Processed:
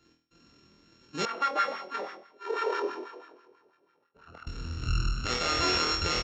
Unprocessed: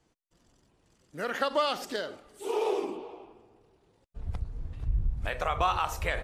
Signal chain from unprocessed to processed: sample sorter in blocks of 32 samples; HPF 89 Hz 6 dB/oct; resonant low shelf 500 Hz +11 dB, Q 1.5; downsampling 16000 Hz; tilt shelf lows -8.5 dB, about 630 Hz; flutter echo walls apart 4.2 m, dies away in 0.44 s; 1.25–4.47 LFO band-pass sine 6.1 Hz 550–1500 Hz; limiter -16 dBFS, peak gain reduction 9 dB

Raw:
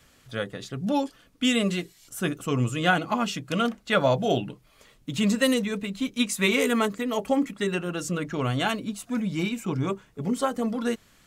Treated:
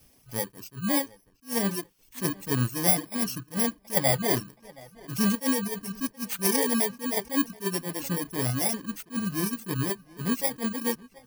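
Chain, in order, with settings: FFT order left unsorted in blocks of 32 samples; reverb removal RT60 0.85 s; tape echo 0.727 s, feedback 34%, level -21 dB, low-pass 3400 Hz; attack slew limiter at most 300 dB/s

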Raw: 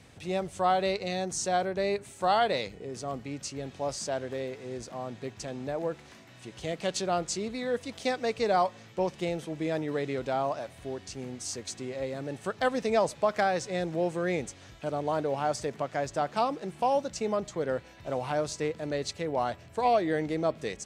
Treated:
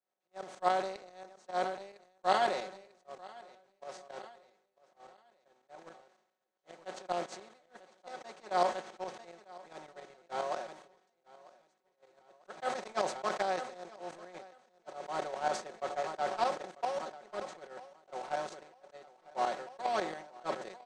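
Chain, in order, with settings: per-bin compression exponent 0.4; weighting filter A; gate -21 dBFS, range -50 dB; tilt shelf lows +3.5 dB, about 880 Hz; comb 5.4 ms, depth 81%; tremolo saw up 7.3 Hz, depth 75%; feedback echo 0.946 s, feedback 40%, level -21.5 dB; sustainer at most 77 dB/s; gain -7 dB

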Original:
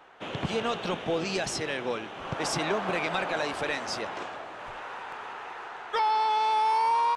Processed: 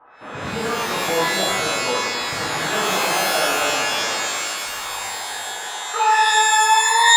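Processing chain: spectral gate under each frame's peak -30 dB strong; LFO low-pass sine 0.51 Hz 730–1700 Hz; shimmer reverb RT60 1.6 s, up +12 st, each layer -2 dB, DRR -6.5 dB; gain -4.5 dB

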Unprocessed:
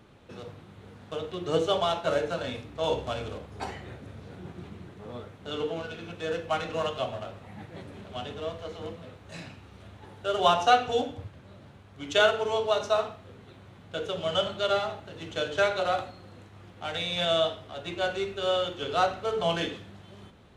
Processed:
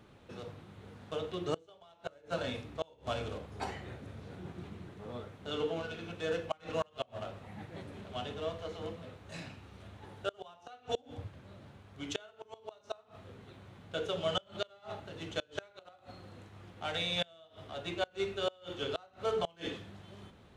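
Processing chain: flipped gate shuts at -18 dBFS, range -30 dB; gain -3 dB

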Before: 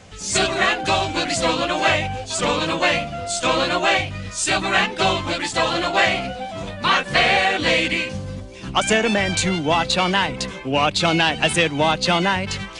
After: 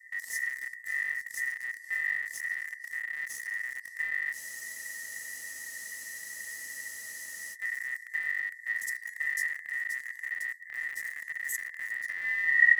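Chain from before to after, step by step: tape stop at the end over 0.82 s; inverse Chebyshev band-stop 260–4500 Hz, stop band 60 dB; in parallel at -8 dB: bit-crush 7-bit; on the sum: ring modulator 1900 Hz; spectral freeze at 4.37, 3.17 s; gain +5.5 dB

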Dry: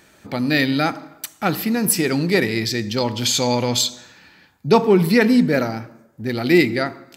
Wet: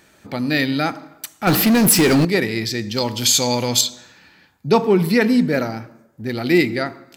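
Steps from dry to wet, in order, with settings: 1.47–2.25 power-law curve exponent 0.5; 2.95–3.81 high shelf 5500 Hz +11 dB; gain -1 dB

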